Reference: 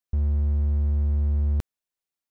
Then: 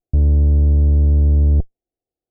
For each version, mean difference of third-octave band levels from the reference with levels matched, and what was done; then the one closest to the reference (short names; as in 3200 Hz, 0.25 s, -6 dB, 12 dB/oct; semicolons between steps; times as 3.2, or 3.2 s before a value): 10.5 dB: minimum comb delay 2.5 ms; elliptic low-pass 690 Hz, stop band 40 dB; notch 420 Hz, Q 12; in parallel at +2 dB: soft clip -30 dBFS, distortion -11 dB; on the sum: gain +8.5 dB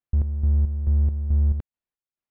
6.0 dB: tone controls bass +4 dB, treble -5 dB; chopper 2.3 Hz, depth 60%, duty 50%; air absorption 290 m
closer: second